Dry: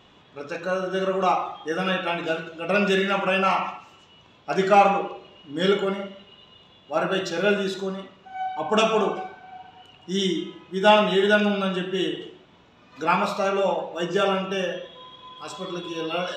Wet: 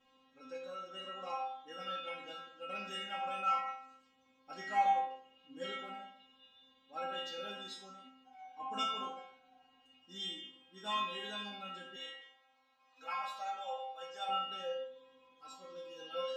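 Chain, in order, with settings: 11.96–14.29 s: resonant low shelf 500 Hz -13 dB, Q 1.5; inharmonic resonator 260 Hz, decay 0.6 s, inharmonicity 0.002; trim +1.5 dB

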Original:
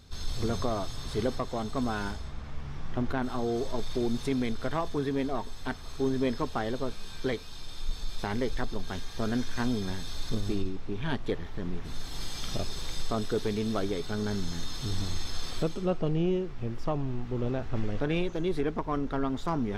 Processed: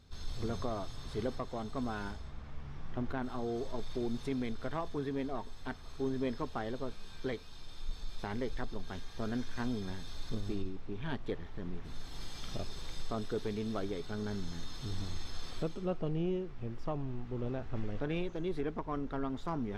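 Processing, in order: treble shelf 5.1 kHz -6.5 dB; trim -6.5 dB

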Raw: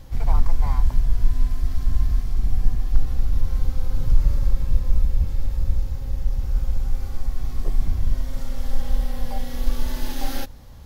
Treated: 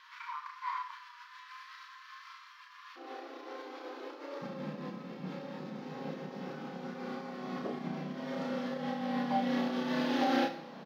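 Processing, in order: peak limiter -11.5 dBFS, peak gain reduction 8 dB; compression, threshold -19 dBFS, peak gain reduction 6 dB; brick-wall FIR high-pass 910 Hz, from 2.95 s 270 Hz, from 4.41 s 160 Hz; distance through air 270 m; doubling 32 ms -3 dB; Schroeder reverb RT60 0.62 s, combs from 26 ms, DRR 8.5 dB; trim +5.5 dB

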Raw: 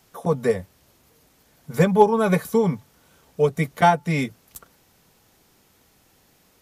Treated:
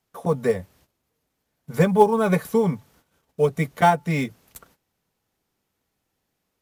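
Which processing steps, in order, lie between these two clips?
gate -54 dBFS, range -16 dB; in parallel at -12 dB: sample-rate reducer 9.5 kHz, jitter 20%; on the sum: trim -2.5 dB

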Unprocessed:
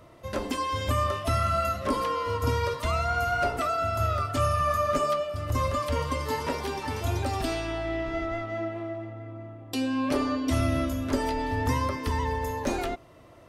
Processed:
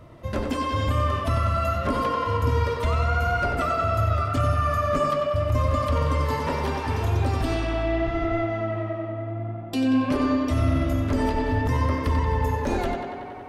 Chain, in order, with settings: tone controls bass +7 dB, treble -5 dB; peak limiter -17 dBFS, peak gain reduction 7.5 dB; tape echo 93 ms, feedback 86%, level -5 dB, low-pass 4.9 kHz; trim +1.5 dB

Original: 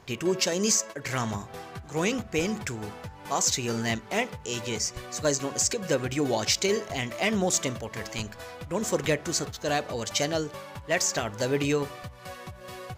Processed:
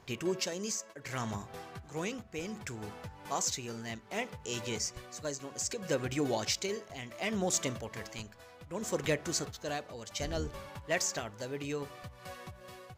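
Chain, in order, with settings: 10.19–10.69 s: octave divider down 2 oct, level +4 dB; tremolo 0.65 Hz, depth 60%; trim -5 dB

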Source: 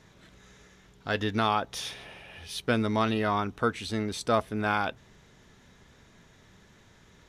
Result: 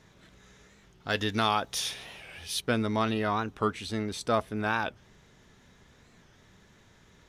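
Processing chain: 1.09–2.61 s: treble shelf 3.2 kHz +9 dB; warped record 45 rpm, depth 160 cents; trim -1.5 dB

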